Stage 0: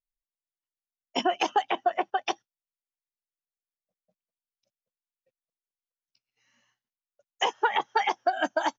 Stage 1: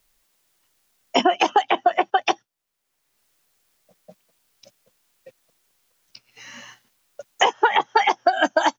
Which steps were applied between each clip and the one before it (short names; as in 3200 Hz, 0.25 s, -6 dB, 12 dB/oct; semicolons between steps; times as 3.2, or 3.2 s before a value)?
three-band squash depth 70%; gain +7.5 dB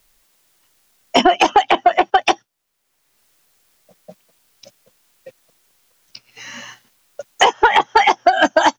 soft clip -9.5 dBFS, distortion -18 dB; gain +7 dB